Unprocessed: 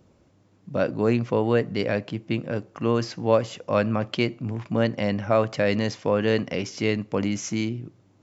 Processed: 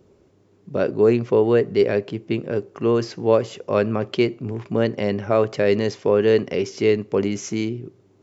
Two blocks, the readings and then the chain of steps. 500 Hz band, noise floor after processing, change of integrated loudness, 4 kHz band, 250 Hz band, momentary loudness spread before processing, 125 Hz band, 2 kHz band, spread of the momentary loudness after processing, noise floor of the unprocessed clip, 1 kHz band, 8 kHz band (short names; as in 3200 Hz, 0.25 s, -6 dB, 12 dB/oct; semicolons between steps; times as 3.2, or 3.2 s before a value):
+6.0 dB, -57 dBFS, +4.0 dB, 0.0 dB, +2.5 dB, 7 LU, 0.0 dB, 0.0 dB, 9 LU, -60 dBFS, +0.5 dB, n/a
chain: bell 400 Hz +14 dB 0.33 oct